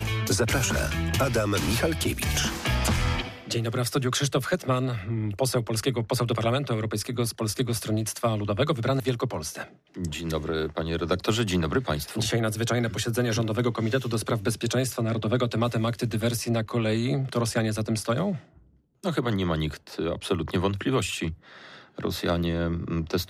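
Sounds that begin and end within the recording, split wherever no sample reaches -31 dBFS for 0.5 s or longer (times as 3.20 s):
19.04–21.33 s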